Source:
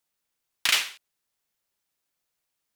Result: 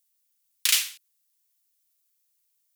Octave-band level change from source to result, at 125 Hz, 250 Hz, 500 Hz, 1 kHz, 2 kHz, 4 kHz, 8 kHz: can't be measured, below −20 dB, below −15 dB, −10.0 dB, −4.5 dB, −0.5 dB, +5.5 dB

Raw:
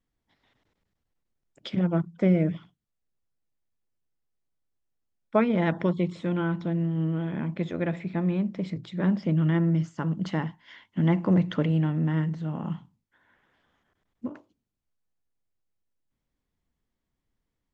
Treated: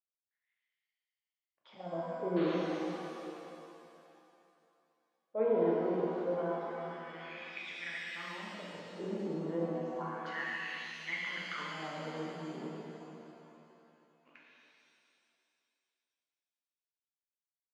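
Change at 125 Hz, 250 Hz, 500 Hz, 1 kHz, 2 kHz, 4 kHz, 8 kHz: −21.0 dB, −13.5 dB, −3.5 dB, −4.0 dB, −1.0 dB, −1.5 dB, can't be measured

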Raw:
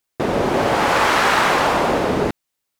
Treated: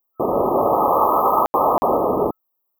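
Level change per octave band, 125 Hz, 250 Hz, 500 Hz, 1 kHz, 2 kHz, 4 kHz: −7.0 dB, −2.0 dB, +1.0 dB, +1.0 dB, below −30 dB, below −30 dB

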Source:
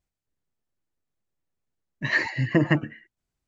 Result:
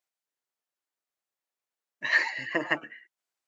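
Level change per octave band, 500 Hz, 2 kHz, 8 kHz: −6.0 dB, 0.0 dB, can't be measured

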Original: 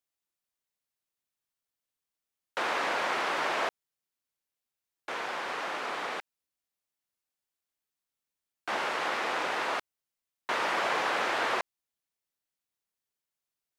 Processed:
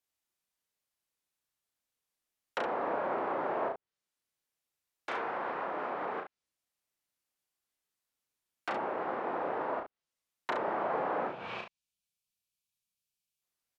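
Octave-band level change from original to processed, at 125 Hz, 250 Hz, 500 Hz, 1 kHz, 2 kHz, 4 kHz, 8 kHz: +2.0 dB, +1.5 dB, +0.5 dB, −3.0 dB, −10.0 dB, −15.5 dB, below −20 dB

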